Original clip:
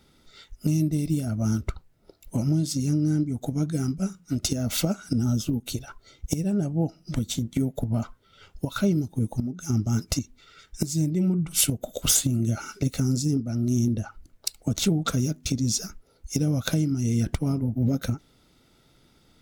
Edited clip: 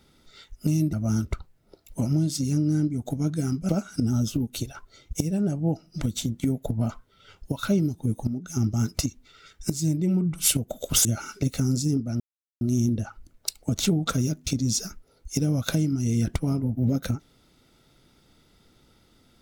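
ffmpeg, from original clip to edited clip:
-filter_complex "[0:a]asplit=5[s0][s1][s2][s3][s4];[s0]atrim=end=0.932[s5];[s1]atrim=start=1.288:end=4.052[s6];[s2]atrim=start=4.818:end=12.182[s7];[s3]atrim=start=12.448:end=13.6,asetpts=PTS-STARTPTS,afade=t=out:st=1.148:d=0.004:c=hsin,apad=pad_dur=0.41[s8];[s4]atrim=start=13.6,asetpts=PTS-STARTPTS,afade=t=in:d=0.004:c=hsin[s9];[s5][s6]acrossfade=d=0.004:c1=hsin:c2=hsin[s10];[s10][s7]acrossfade=d=0.004:c1=hsin:c2=hsin[s11];[s8][s9]concat=n=2:v=0:a=1[s12];[s11][s12]acrossfade=d=0.004:c1=hsin:c2=hsin"

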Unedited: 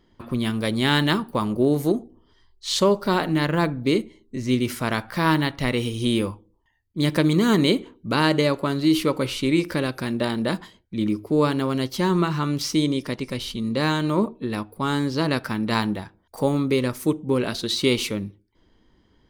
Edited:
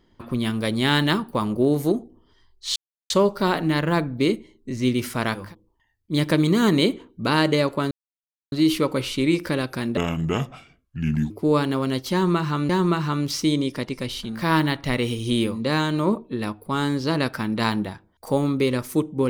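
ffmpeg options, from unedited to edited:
-filter_complex "[0:a]asplit=9[s0][s1][s2][s3][s4][s5][s6][s7][s8];[s0]atrim=end=2.76,asetpts=PTS-STARTPTS,afade=t=out:st=2.756:d=0.004:c=hsin,apad=pad_dur=0.34[s9];[s1]atrim=start=2.76:end=5.21,asetpts=PTS-STARTPTS,afade=t=in:d=0.004:c=hsin[s10];[s2]atrim=start=6.17:end=8.77,asetpts=PTS-STARTPTS,afade=t=out:st=2.596:d=0.004:c=hsin,apad=pad_dur=0.61[s11];[s3]atrim=start=8.77:end=10.224,asetpts=PTS-STARTPTS,afade=t=in:d=0.004:c=hsin[s12];[s4]atrim=start=10.22:end=11.18,asetpts=PTS-STARTPTS,asetrate=31752,aresample=44100[s13];[s5]atrim=start=11.176:end=12.572[s14];[s6]atrim=start=11.998:end=13.77[s15];[s7]atrim=start=4.97:end=6.41[s16];[s8]atrim=start=13.53[s17];[s9][s10]concat=n=2:v=0:a=1[s18];[s11][s12]concat=n=2:v=0:a=1[s19];[s18][s19]acrossfade=d=0.24:c1=tri:c2=tri[s20];[s20][s13]acrossfade=d=0.004:c1=hsin:c2=hsin[s21];[s21][s14]acrossfade=d=0.004:c1=hsin:c2=hsin[s22];[s22][s15]acrossfade=d=0.004:c1=hsin:c2=hsin[s23];[s23][s16]acrossfade=d=0.24:c1=tri:c2=tri[s24];[s24][s17]acrossfade=d=0.24:c1=tri:c2=tri"

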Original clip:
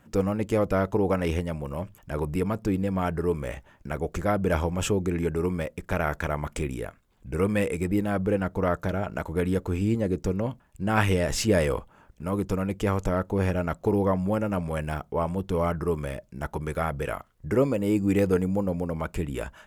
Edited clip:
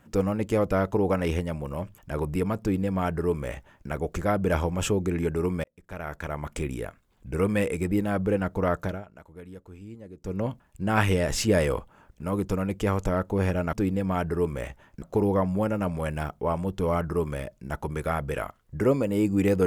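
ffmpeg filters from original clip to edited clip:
-filter_complex "[0:a]asplit=6[s0][s1][s2][s3][s4][s5];[s0]atrim=end=5.64,asetpts=PTS-STARTPTS,afade=t=out:st=5.636:d=0.004:c=hsin[s6];[s1]atrim=start=5.64:end=9.05,asetpts=PTS-STARTPTS,afade=t=in:d=1.09,afade=t=out:st=3.19:d=0.22:silence=0.125893[s7];[s2]atrim=start=9.05:end=10.2,asetpts=PTS-STARTPTS,volume=0.126[s8];[s3]atrim=start=10.2:end=13.732,asetpts=PTS-STARTPTS,afade=t=in:d=0.22:silence=0.125893[s9];[s4]atrim=start=2.598:end=3.892[s10];[s5]atrim=start=13.728[s11];[s6][s7][s8][s9]concat=n=4:v=0:a=1[s12];[s12][s10]acrossfade=d=0.004:c1=hsin:c2=hsin[s13];[s13][s11]acrossfade=d=0.004:c1=hsin:c2=hsin"

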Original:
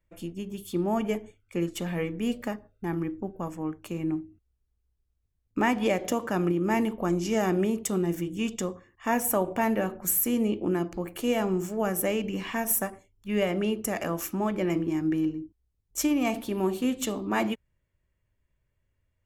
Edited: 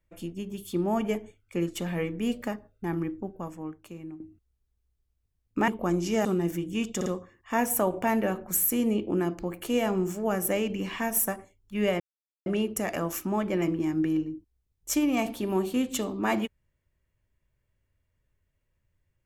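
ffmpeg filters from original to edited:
-filter_complex "[0:a]asplit=7[s0][s1][s2][s3][s4][s5][s6];[s0]atrim=end=4.2,asetpts=PTS-STARTPTS,afade=t=out:st=3.02:d=1.18:silence=0.177828[s7];[s1]atrim=start=4.2:end=5.682,asetpts=PTS-STARTPTS,afade=t=in:d=0.004:c=hsin:silence=0.177828[s8];[s2]atrim=start=6.868:end=7.442[s9];[s3]atrim=start=7.888:end=8.652[s10];[s4]atrim=start=8.598:end=8.652[s11];[s5]atrim=start=8.598:end=13.54,asetpts=PTS-STARTPTS,afade=t=out:st=4.938:d=0.004:c=hsin,apad=pad_dur=0.46[s12];[s6]atrim=start=13.54,asetpts=PTS-STARTPTS,afade=t=in:d=0.004:c=hsin[s13];[s7][s8]concat=n=2:v=0:a=1[s14];[s14][s9]acrossfade=d=0.004:c1=hsin:c2=hsin[s15];[s15][s10]acrossfade=d=0.004:c1=hsin:c2=hsin[s16];[s16][s11]acrossfade=d=0.004:c1=hsin:c2=hsin[s17];[s12][s13]concat=n=2:v=0:a=1[s18];[s17][s18]acrossfade=d=0.004:c1=hsin:c2=hsin"

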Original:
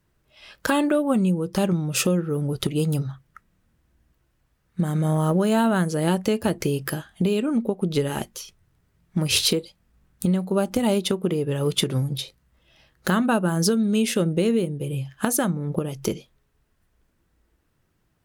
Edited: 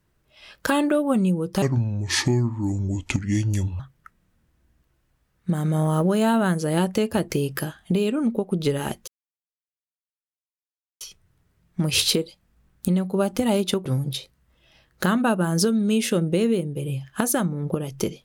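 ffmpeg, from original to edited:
-filter_complex "[0:a]asplit=5[s0][s1][s2][s3][s4];[s0]atrim=end=1.624[s5];[s1]atrim=start=1.62:end=3.1,asetpts=PTS-STARTPTS,asetrate=29988,aresample=44100,atrim=end_sample=95982,asetpts=PTS-STARTPTS[s6];[s2]atrim=start=3.096:end=8.38,asetpts=PTS-STARTPTS,afade=t=out:st=5.28:d=0.004:c=hsin,apad=pad_dur=1.93[s7];[s3]atrim=start=8.38:end=11.232,asetpts=PTS-STARTPTS,afade=t=in:d=0.004:c=hsin[s8];[s4]atrim=start=11.898[s9];[s5][s6]acrossfade=d=0.004:c1=hsin:c2=hsin[s10];[s7][s8]concat=n=2:v=0:a=1[s11];[s10][s11]acrossfade=d=0.004:c1=hsin:c2=hsin[s12];[s12][s9]acrossfade=d=0.004:c1=hsin:c2=hsin"

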